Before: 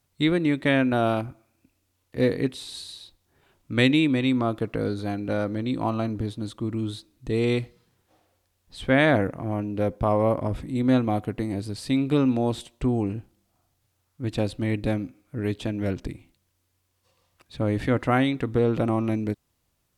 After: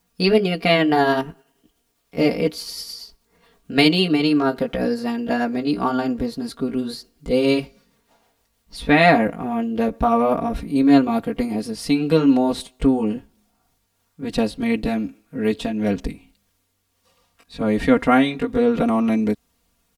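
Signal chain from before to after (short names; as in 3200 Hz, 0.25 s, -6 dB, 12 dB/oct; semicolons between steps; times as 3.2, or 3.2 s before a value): gliding pitch shift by +3.5 st ending unshifted; comb 4.3 ms, depth 92%; gain +4.5 dB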